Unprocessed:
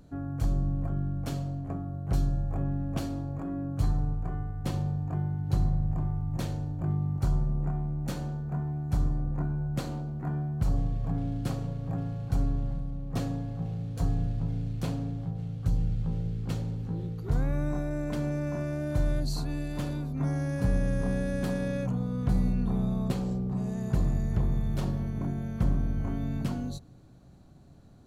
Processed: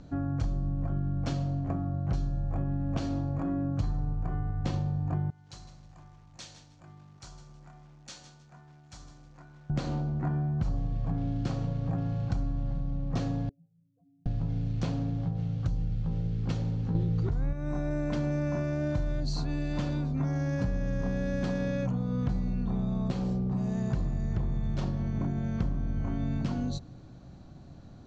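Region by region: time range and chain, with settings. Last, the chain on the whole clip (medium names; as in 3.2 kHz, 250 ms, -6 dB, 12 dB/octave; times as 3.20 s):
5.30–9.70 s: pre-emphasis filter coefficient 0.97 + bit-crushed delay 157 ms, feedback 35%, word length 10-bit, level -10 dB
13.49–14.26 s: spectral contrast enhancement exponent 3.2 + Chebyshev high-pass 310 Hz, order 4
16.95–17.53 s: bass shelf 140 Hz +6.5 dB + level flattener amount 100%
whole clip: steep low-pass 6.7 kHz 36 dB/octave; band-stop 420 Hz, Q 12; compression, threshold -32 dBFS; trim +5.5 dB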